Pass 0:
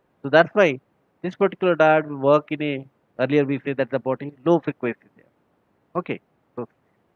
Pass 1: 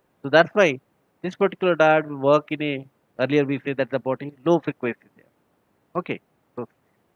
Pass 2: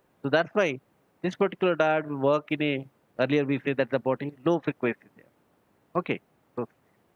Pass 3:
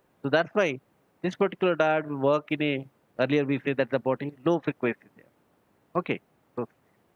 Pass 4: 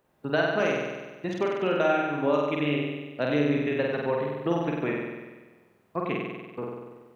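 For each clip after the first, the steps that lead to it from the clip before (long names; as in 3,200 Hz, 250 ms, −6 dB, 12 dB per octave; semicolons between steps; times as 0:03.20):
high-shelf EQ 4,700 Hz +10.5 dB; level −1 dB
downward compressor 6 to 1, threshold −19 dBFS, peak gain reduction 10.5 dB
no processing that can be heard
flutter between parallel walls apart 8.2 metres, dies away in 1.3 s; level −4 dB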